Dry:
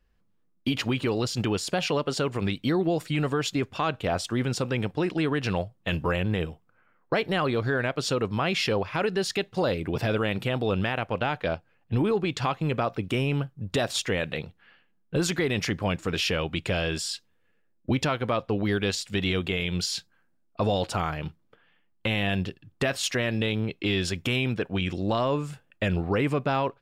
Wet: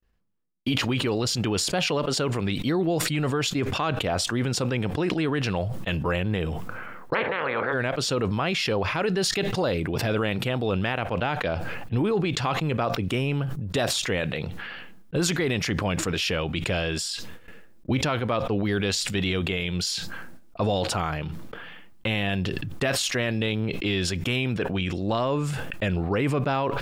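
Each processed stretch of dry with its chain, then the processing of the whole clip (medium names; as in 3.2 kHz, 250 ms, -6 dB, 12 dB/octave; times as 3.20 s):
7.13–7.72 s: spectral peaks clipped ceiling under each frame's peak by 26 dB + cabinet simulation 160–2100 Hz, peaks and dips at 180 Hz -5 dB, 310 Hz -7 dB, 500 Hz +8 dB, 710 Hz -6 dB
whole clip: gate with hold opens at -59 dBFS; decay stretcher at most 24 dB/s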